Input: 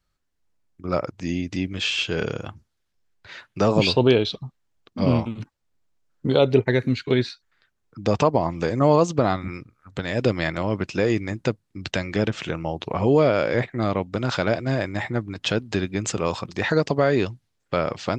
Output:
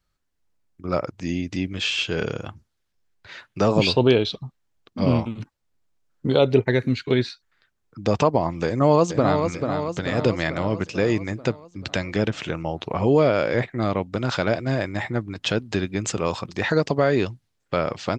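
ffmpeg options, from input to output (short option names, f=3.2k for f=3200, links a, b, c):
-filter_complex "[0:a]asplit=2[a][b];[b]afade=t=in:st=8.66:d=0.01,afade=t=out:st=9.44:d=0.01,aecho=0:1:440|880|1320|1760|2200|2640|3080|3520:0.501187|0.300712|0.180427|0.108256|0.0649539|0.0389723|0.0233834|0.01403[c];[a][c]amix=inputs=2:normalize=0"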